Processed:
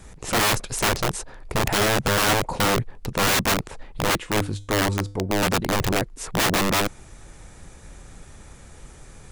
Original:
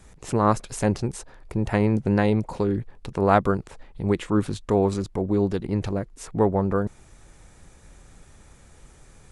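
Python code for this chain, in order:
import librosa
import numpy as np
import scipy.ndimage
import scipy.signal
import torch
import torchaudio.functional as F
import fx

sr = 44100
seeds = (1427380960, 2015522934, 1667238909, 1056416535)

y = fx.comb_fb(x, sr, f0_hz=100.0, decay_s=0.41, harmonics='odd', damping=0.0, mix_pct=60, at=(4.18, 5.43))
y = (np.mod(10.0 ** (21.0 / 20.0) * y + 1.0, 2.0) - 1.0) / 10.0 ** (21.0 / 20.0)
y = F.gain(torch.from_numpy(y), 6.0).numpy()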